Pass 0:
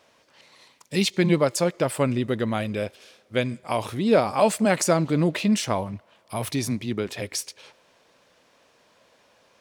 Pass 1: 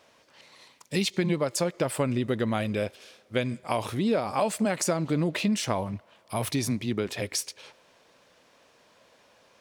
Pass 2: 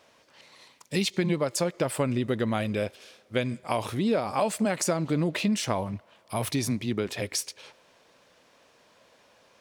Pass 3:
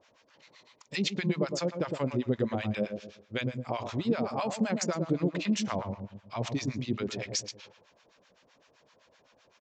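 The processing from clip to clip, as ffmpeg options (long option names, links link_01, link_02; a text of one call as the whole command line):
ffmpeg -i in.wav -af "acompressor=threshold=-22dB:ratio=6" out.wav
ffmpeg -i in.wav -af anull out.wav
ffmpeg -i in.wav -filter_complex "[0:a]asplit=2[link_01][link_02];[link_02]adelay=111,lowpass=frequency=870:poles=1,volume=-5dB,asplit=2[link_03][link_04];[link_04]adelay=111,lowpass=frequency=870:poles=1,volume=0.42,asplit=2[link_05][link_06];[link_06]adelay=111,lowpass=frequency=870:poles=1,volume=0.42,asplit=2[link_07][link_08];[link_08]adelay=111,lowpass=frequency=870:poles=1,volume=0.42,asplit=2[link_09][link_10];[link_10]adelay=111,lowpass=frequency=870:poles=1,volume=0.42[link_11];[link_01][link_03][link_05][link_07][link_09][link_11]amix=inputs=6:normalize=0,aresample=16000,aresample=44100,acrossover=split=810[link_12][link_13];[link_12]aeval=exprs='val(0)*(1-1/2+1/2*cos(2*PI*7.8*n/s))':channel_layout=same[link_14];[link_13]aeval=exprs='val(0)*(1-1/2-1/2*cos(2*PI*7.8*n/s))':channel_layout=same[link_15];[link_14][link_15]amix=inputs=2:normalize=0" out.wav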